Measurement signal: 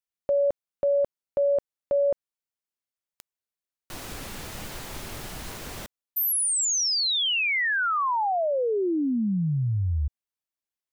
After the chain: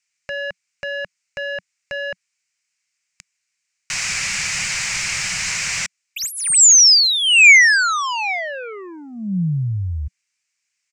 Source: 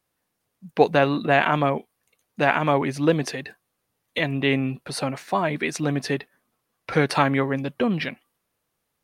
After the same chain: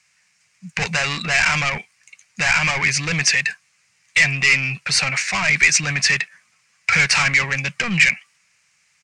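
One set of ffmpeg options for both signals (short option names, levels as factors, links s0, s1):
-filter_complex "[0:a]acontrast=52,asplit=2[s0][s1];[s1]highpass=f=720:p=1,volume=17.8,asoftclip=type=tanh:threshold=0.944[s2];[s0][s2]amix=inputs=2:normalize=0,lowpass=f=4700:p=1,volume=0.501,firequalizer=gain_entry='entry(180,0);entry(260,-21);entry(2300,8);entry(3400,-6);entry(5000,6);entry(7400,9);entry(12000,-18)':delay=0.05:min_phase=1,volume=0.501"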